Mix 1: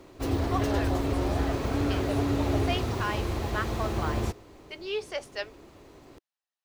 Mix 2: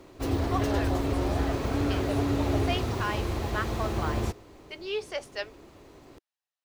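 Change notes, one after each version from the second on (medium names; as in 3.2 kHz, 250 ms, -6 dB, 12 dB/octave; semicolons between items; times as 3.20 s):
no change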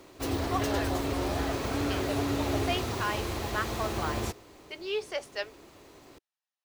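background: add tilt EQ +1.5 dB/octave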